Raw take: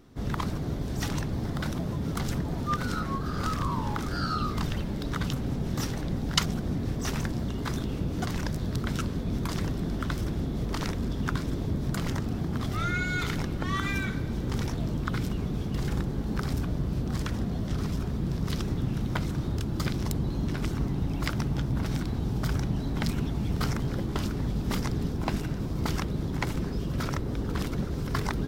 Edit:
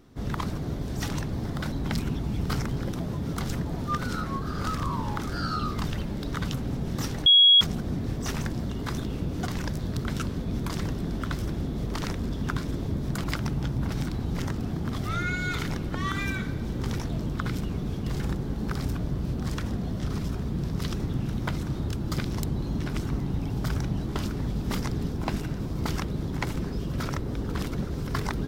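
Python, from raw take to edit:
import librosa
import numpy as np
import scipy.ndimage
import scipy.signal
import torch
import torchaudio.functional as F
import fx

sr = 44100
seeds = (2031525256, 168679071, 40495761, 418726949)

y = fx.edit(x, sr, fx.bleep(start_s=6.05, length_s=0.35, hz=3320.0, db=-12.5),
    fx.move(start_s=21.18, length_s=1.11, to_s=12.03),
    fx.move(start_s=22.83, length_s=1.21, to_s=1.72), tone=tone)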